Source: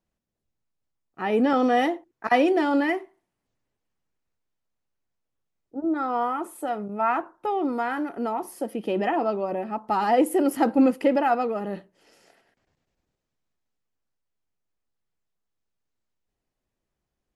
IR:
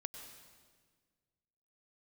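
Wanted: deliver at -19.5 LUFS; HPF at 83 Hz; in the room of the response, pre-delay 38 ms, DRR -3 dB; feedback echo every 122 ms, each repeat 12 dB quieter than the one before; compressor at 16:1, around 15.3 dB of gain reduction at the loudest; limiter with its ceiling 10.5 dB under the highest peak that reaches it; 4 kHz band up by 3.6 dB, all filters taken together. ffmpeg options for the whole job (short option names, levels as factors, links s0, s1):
-filter_complex "[0:a]highpass=83,equalizer=f=4000:t=o:g=5.5,acompressor=threshold=0.0316:ratio=16,alimiter=level_in=1.78:limit=0.0631:level=0:latency=1,volume=0.562,aecho=1:1:122|244|366:0.251|0.0628|0.0157,asplit=2[s0][s1];[1:a]atrim=start_sample=2205,adelay=38[s2];[s1][s2]afir=irnorm=-1:irlink=0,volume=1.88[s3];[s0][s3]amix=inputs=2:normalize=0,volume=4.73"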